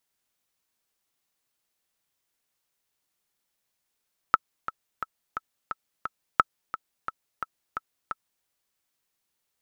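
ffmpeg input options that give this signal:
-f lavfi -i "aevalsrc='pow(10,(-3.5-13.5*gte(mod(t,6*60/175),60/175))/20)*sin(2*PI*1310*mod(t,60/175))*exp(-6.91*mod(t,60/175)/0.03)':d=4.11:s=44100"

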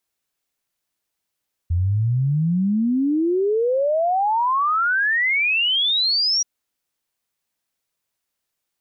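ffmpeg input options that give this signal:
-f lavfi -i "aevalsrc='0.15*clip(min(t,4.73-t)/0.01,0,1)*sin(2*PI*83*4.73/log(5800/83)*(exp(log(5800/83)*t/4.73)-1))':d=4.73:s=44100"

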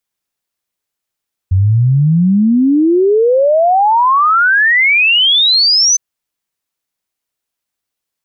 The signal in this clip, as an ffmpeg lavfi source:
-f lavfi -i "aevalsrc='0.447*clip(min(t,4.46-t)/0.01,0,1)*sin(2*PI*90*4.46/log(6200/90)*(exp(log(6200/90)*t/4.46)-1))':d=4.46:s=44100"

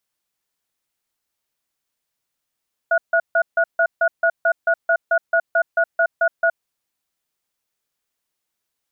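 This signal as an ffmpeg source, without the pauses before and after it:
-f lavfi -i "aevalsrc='0.158*(sin(2*PI*668*t)+sin(2*PI*1450*t))*clip(min(mod(t,0.22),0.07-mod(t,0.22))/0.005,0,1)':d=3.7:s=44100"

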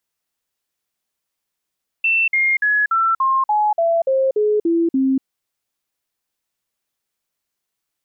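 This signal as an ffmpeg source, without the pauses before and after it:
-f lavfi -i "aevalsrc='0.211*clip(min(mod(t,0.29),0.24-mod(t,0.29))/0.005,0,1)*sin(2*PI*2680*pow(2,-floor(t/0.29)/3)*mod(t,0.29))':d=3.19:s=44100"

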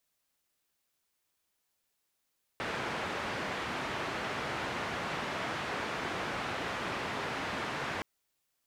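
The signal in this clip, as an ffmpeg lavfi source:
-f lavfi -i "anoisesrc=c=white:d=5.42:r=44100:seed=1,highpass=f=82,lowpass=f=1800,volume=-20.6dB"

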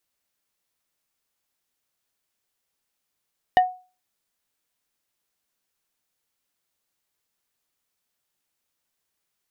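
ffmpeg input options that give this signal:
-f lavfi -i "aevalsrc='0.335*pow(10,-3*t/0.34)*sin(2*PI*735*t)+0.133*pow(10,-3*t/0.113)*sin(2*PI*1837.5*t)+0.0531*pow(10,-3*t/0.064)*sin(2*PI*2940*t)+0.0211*pow(10,-3*t/0.049)*sin(2*PI*3675*t)+0.00841*pow(10,-3*t/0.036)*sin(2*PI*4777.5*t)':d=0.45:s=44100"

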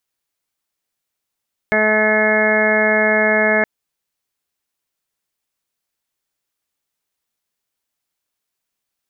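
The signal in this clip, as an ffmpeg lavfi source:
-f lavfi -i "aevalsrc='0.0794*sin(2*PI*215*t)+0.0891*sin(2*PI*430*t)+0.133*sin(2*PI*645*t)+0.0501*sin(2*PI*860*t)+0.02*sin(2*PI*1075*t)+0.0355*sin(2*PI*1290*t)+0.0376*sin(2*PI*1505*t)+0.133*sin(2*PI*1720*t)+0.0251*sin(2*PI*1935*t)+0.106*sin(2*PI*2150*t)':d=1.92:s=44100"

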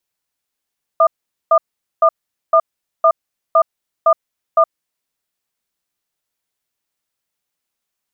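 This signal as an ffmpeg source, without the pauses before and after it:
-f lavfi -i "aevalsrc='0.316*(sin(2*PI*655*t)+sin(2*PI*1210*t))*clip(min(mod(t,0.51),0.07-mod(t,0.51))/0.005,0,1)':d=3.96:s=44100"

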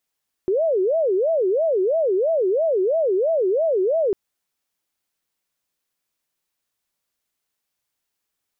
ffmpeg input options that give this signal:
-f lavfi -i "aevalsrc='0.15*sin(2*PI*(514*t-148/(2*PI*3)*sin(2*PI*3*t)))':d=3.65:s=44100"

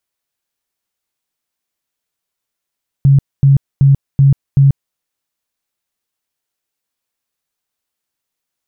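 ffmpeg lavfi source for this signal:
-f lavfi -i "aevalsrc='0.596*sin(2*PI*138*mod(t,0.38))*lt(mod(t,0.38),19/138)':d=1.9:s=44100"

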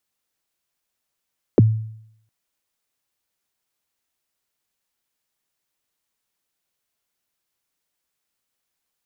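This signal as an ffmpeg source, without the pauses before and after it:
-f lavfi -i "aevalsrc='0.473*pow(10,-3*t/0.71)*sin(2*PI*(530*0.023/log(110/530)*(exp(log(110/530)*min(t,0.023)/0.023)-1)+110*max(t-0.023,0)))':d=0.71:s=44100"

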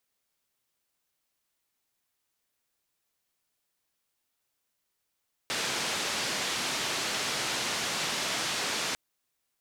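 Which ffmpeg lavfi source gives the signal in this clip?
-f lavfi -i "anoisesrc=c=white:d=3.45:r=44100:seed=1,highpass=f=130,lowpass=f=5500,volume=-20.8dB"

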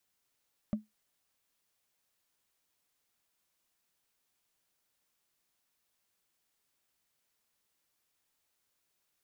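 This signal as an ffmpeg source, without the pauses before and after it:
-f lavfi -i "aevalsrc='0.0631*pow(10,-3*t/0.17)*sin(2*PI*214*t)+0.02*pow(10,-3*t/0.05)*sin(2*PI*590*t)+0.00631*pow(10,-3*t/0.022)*sin(2*PI*1156.5*t)+0.002*pow(10,-3*t/0.012)*sin(2*PI*1911.7*t)+0.000631*pow(10,-3*t/0.008)*sin(2*PI*2854.8*t)':d=0.45:s=44100"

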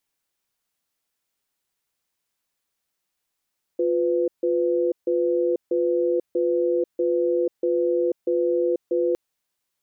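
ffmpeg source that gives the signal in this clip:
-f lavfi -i "aevalsrc='0.0841*(sin(2*PI*352*t)+sin(2*PI*500*t))*clip(min(mod(t,0.64),0.49-mod(t,0.64))/0.005,0,1)':d=5.36:s=44100"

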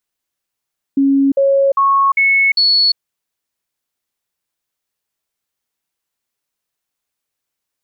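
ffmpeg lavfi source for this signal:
-f lavfi -i "aevalsrc='0.355*clip(min(mod(t,0.4),0.35-mod(t,0.4))/0.005,0,1)*sin(2*PI*275*pow(2,floor(t/0.4)/1)*mod(t,0.4))':d=2:s=44100"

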